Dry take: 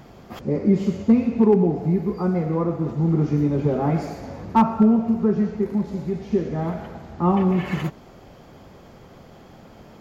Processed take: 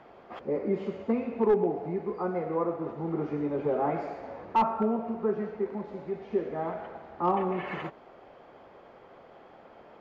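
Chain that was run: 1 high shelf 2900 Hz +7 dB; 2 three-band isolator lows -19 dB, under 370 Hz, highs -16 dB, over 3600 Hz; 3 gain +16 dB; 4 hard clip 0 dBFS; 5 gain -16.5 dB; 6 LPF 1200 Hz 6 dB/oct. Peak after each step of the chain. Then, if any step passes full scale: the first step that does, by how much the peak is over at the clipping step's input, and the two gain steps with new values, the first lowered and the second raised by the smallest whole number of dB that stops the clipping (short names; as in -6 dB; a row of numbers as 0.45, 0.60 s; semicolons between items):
-6.0, -7.0, +9.0, 0.0, -16.5, -16.5 dBFS; step 3, 9.0 dB; step 3 +7 dB, step 5 -7.5 dB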